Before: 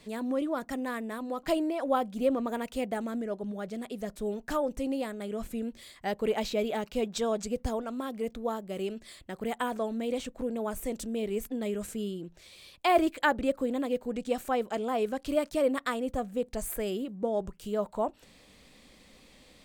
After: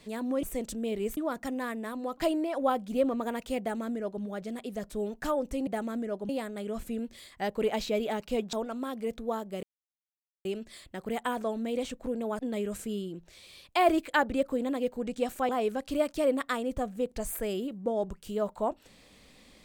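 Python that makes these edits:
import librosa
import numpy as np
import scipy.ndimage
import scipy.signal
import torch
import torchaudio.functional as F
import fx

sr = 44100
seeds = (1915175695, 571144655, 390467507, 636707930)

y = fx.edit(x, sr, fx.duplicate(start_s=2.86, length_s=0.62, to_s=4.93),
    fx.cut(start_s=7.17, length_s=0.53),
    fx.insert_silence(at_s=8.8, length_s=0.82),
    fx.move(start_s=10.74, length_s=0.74, to_s=0.43),
    fx.cut(start_s=14.58, length_s=0.28), tone=tone)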